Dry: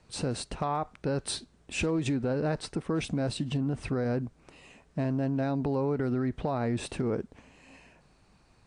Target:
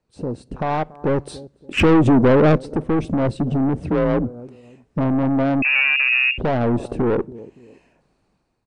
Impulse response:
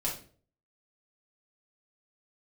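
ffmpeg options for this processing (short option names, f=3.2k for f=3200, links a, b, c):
-filter_complex "[0:a]afwtdn=0.02,equalizer=f=390:t=o:w=2.4:g=7,dynaudnorm=f=250:g=5:m=11.5dB,asplit=2[a][b];[b]adelay=284,lowpass=f=1.4k:p=1,volume=-23dB,asplit=2[c][d];[d]adelay=284,lowpass=f=1.4k:p=1,volume=0.32[e];[a][c][e]amix=inputs=3:normalize=0,aeval=exprs='(tanh(6.31*val(0)+0.15)-tanh(0.15))/6.31':c=same,asettb=1/sr,asplit=3[f][g][h];[f]atrim=end=3.804[i];[g]atrim=start=3.8:end=4.24,asetpts=PTS-STARTPTS,afade=t=in:d=0.004:c=qsin,afade=t=out:st=0.436:d=0.004:c=qsin,afreqshift=36[j];[h]atrim=start=4.236[k];[i][j]acrossfade=d=0.004:c1=hsin:c2=qsin[l];[l][k]acrossfade=d=0.004:c1=qsin:c2=hsin,asplit=2[m][n];[1:a]atrim=start_sample=2205[o];[n][o]afir=irnorm=-1:irlink=0,volume=-26.5dB[p];[m][p]amix=inputs=2:normalize=0,asettb=1/sr,asplit=3[q][r][s];[q]atrim=end=1.774[t];[r]atrim=start=1.77:end=2.58,asetpts=PTS-STARTPTS,afade=t=in:d=0.004:c=qsin,afade=t=out:st=0.806:d=0.004:c=qsin,acontrast=39[u];[s]atrim=start=2.576[v];[t][u]acrossfade=d=0.004:c1=hsin:c2=qsin[w];[w][v]acrossfade=d=0.004:c1=qsin:c2=hsin,asettb=1/sr,asplit=3[x][y][z];[x]atrim=end=5.624[aa];[y]atrim=start=5.62:end=6.38,asetpts=PTS-STARTPTS,afade=t=in:d=0.004:c=qsin,afade=t=out:st=0.756:d=0.004:c=qsin,lowpass=f=2.4k:t=q:w=0.5098,lowpass=f=2.4k:t=q:w=0.6013,lowpass=f=2.4k:t=q:w=0.9,lowpass=f=2.4k:t=q:w=2.563,afreqshift=-2800[ab];[z]atrim=start=6.376[ac];[aa][ab]acrossfade=d=0.004:c1=hsin:c2=qsin[ad];[ad][ac]acrossfade=d=0.004:c1=qsin:c2=hsin"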